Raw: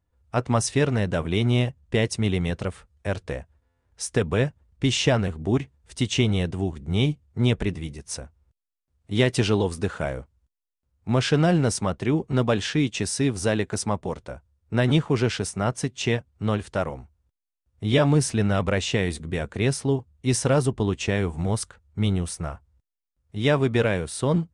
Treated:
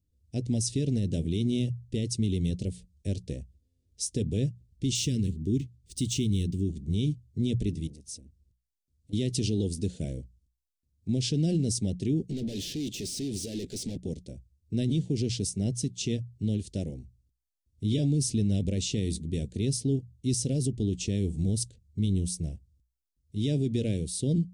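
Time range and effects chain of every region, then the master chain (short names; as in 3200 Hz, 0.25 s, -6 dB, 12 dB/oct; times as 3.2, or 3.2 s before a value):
4.95–6.69 median filter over 3 samples + dynamic EQ 9100 Hz, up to +7 dB, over -51 dBFS, Q 1.9 + Butterworth band-stop 760 Hz, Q 0.82
7.87–9.13 compressor 3:1, threshold -38 dBFS + core saturation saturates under 740 Hz
12.29–13.98 bell 930 Hz -5.5 dB 1.3 oct + level quantiser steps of 18 dB + overdrive pedal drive 33 dB, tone 2800 Hz, clips at -22.5 dBFS
whole clip: Chebyshev band-stop 290–4600 Hz, order 2; notches 60/120/180 Hz; limiter -19 dBFS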